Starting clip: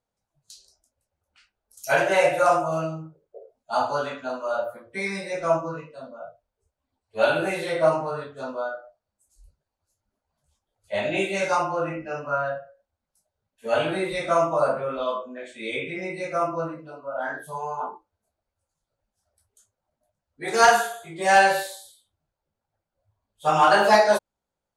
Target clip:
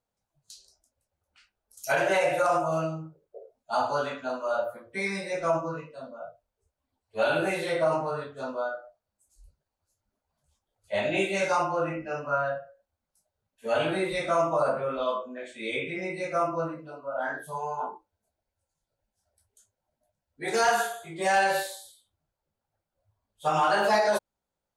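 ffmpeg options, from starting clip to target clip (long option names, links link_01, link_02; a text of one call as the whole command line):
ffmpeg -i in.wav -filter_complex "[0:a]asettb=1/sr,asplit=3[link_01][link_02][link_03];[link_01]atrim=end=17.604[link_04];[link_02]atrim=start=17.6:end=20.67,asetpts=PTS-STARTPTS,afade=type=in:duration=0.004:curve=qsin,afade=type=out:start_time=3.066:duration=0.004:curve=qsin,bandreject=frequency=1200:width=6.2[link_05];[link_03]atrim=start=20.666[link_06];[link_04][link_05]acrossfade=duration=0.004:curve1=hsin:curve2=qsin[link_07];[link_07][link_06]acrossfade=duration=0.004:curve1=qsin:curve2=hsin,alimiter=limit=-14dB:level=0:latency=1:release=48,volume=-1.5dB" out.wav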